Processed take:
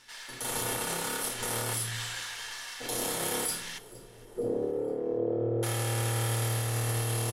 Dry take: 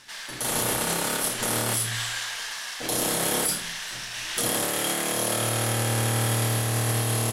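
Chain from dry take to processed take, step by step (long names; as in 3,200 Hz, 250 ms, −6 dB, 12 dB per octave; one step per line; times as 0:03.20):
0:03.78–0:05.63: low-pass with resonance 430 Hz, resonance Q 4.3
echo with shifted repeats 464 ms, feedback 48%, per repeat −59 Hz, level −22 dB
convolution reverb RT60 0.30 s, pre-delay 4 ms, DRR 8.5 dB
level −7.5 dB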